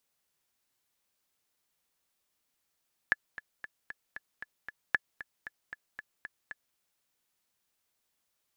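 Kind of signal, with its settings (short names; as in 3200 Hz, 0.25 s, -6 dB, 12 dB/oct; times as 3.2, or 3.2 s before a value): metronome 230 bpm, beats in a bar 7, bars 2, 1720 Hz, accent 16.5 dB -11 dBFS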